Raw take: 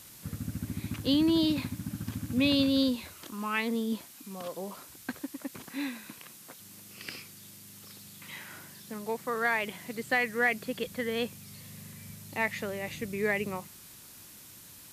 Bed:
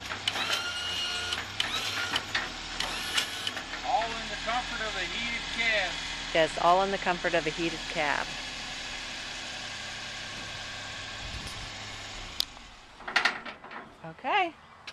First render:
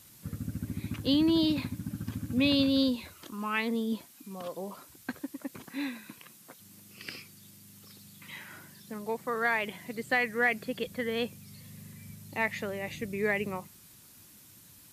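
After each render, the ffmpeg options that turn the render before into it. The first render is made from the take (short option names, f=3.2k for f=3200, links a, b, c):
-af "afftdn=nr=6:nf=-51"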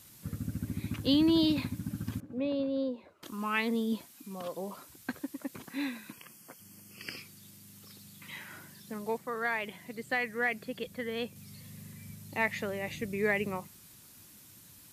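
-filter_complex "[0:a]asettb=1/sr,asplit=3[a][b][c];[a]atrim=end=2.204[d];[b]atrim=start=2.2:end=3.23,asetpts=PTS-STARTPTS,afade=t=in:d=0.004:c=qsin,afade=t=out:st=1.026:d=0.004:c=qsin,bandpass=f=530:t=q:w=1.5[e];[c]atrim=start=3.226[f];[d][e]acrossfade=d=0.004:c1=hsin:c2=qsin[g];[g][f]acrossfade=d=0.004:c1=qsin:c2=hsin,asettb=1/sr,asplit=3[h][i][j];[h]atrim=end=6.124[k];[i]atrim=start=6.12:end=7.17,asetpts=PTS-STARTPTS,afade=t=in:d=0.004:c=qsin,afade=t=out:st=1.046:d=0.004:c=qsin,asuperstop=centerf=3800:order=12:qfactor=4.2[l];[j]atrim=start=7.166[m];[k][l]acrossfade=d=0.004:c1=hsin:c2=qsin[n];[n][m]acrossfade=d=0.004:c1=qsin:c2=hsin,asplit=3[o][p][q];[o]atrim=end=9.182[r];[p]atrim=start=9.178:end=11.362,asetpts=PTS-STARTPTS,volume=-4dB[s];[q]atrim=start=11.358[t];[r][s]acrossfade=d=0.004:c1=hsin:c2=hsin[u];[u][t]acrossfade=d=0.004:c1=hsin:c2=hsin"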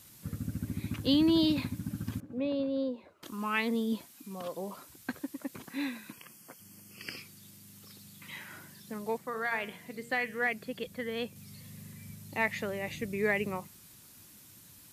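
-filter_complex "[0:a]asettb=1/sr,asplit=3[a][b][c];[a]atrim=end=9.294[d];[b]atrim=start=9.29:end=10.47,asetpts=PTS-STARTPTS,afade=t=in:d=0.004:c=qsin,afade=t=out:st=1.176:d=0.004:c=qsin,bandreject=f=117.3:t=h:w=4,bandreject=f=234.6:t=h:w=4,bandreject=f=351.9:t=h:w=4,bandreject=f=469.2:t=h:w=4,bandreject=f=586.5:t=h:w=4,bandreject=f=703.8:t=h:w=4,bandreject=f=821.1:t=h:w=4,bandreject=f=938.4:t=h:w=4,bandreject=f=1.0557k:t=h:w=4,bandreject=f=1.173k:t=h:w=4,bandreject=f=1.2903k:t=h:w=4,bandreject=f=1.4076k:t=h:w=4,bandreject=f=1.5249k:t=h:w=4,bandreject=f=1.6422k:t=h:w=4,bandreject=f=1.7595k:t=h:w=4,bandreject=f=1.8768k:t=h:w=4,bandreject=f=1.9941k:t=h:w=4,bandreject=f=2.1114k:t=h:w=4,bandreject=f=2.2287k:t=h:w=4,bandreject=f=2.346k:t=h:w=4,bandreject=f=2.4633k:t=h:w=4,bandreject=f=2.5806k:t=h:w=4,bandreject=f=2.6979k:t=h:w=4,bandreject=f=2.8152k:t=h:w=4,bandreject=f=2.9325k:t=h:w=4,bandreject=f=3.0498k:t=h:w=4,bandreject=f=3.1671k:t=h:w=4,bandreject=f=3.2844k:t=h:w=4,bandreject=f=3.4017k:t=h:w=4,bandreject=f=3.519k:t=h:w=4,bandreject=f=3.6363k:t=h:w=4[e];[c]atrim=start=10.466[f];[d][e]acrossfade=d=0.004:c1=hsin:c2=qsin[g];[g][f]acrossfade=d=0.004:c1=qsin:c2=hsin"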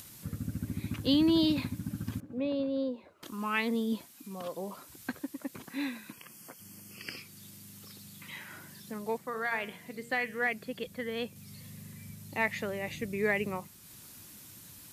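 -af "acompressor=mode=upward:threshold=-44dB:ratio=2.5"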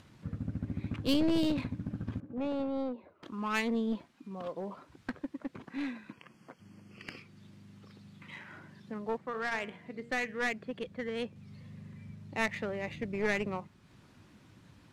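-af "aeval=exprs='clip(val(0),-1,0.0237)':c=same,adynamicsmooth=sensitivity=5:basefreq=2.3k"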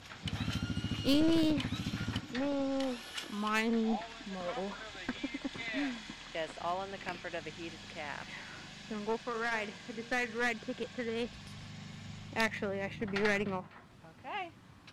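-filter_complex "[1:a]volume=-13.5dB[a];[0:a][a]amix=inputs=2:normalize=0"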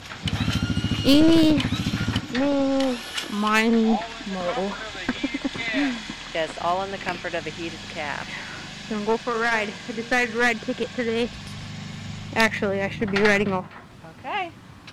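-af "volume=12dB"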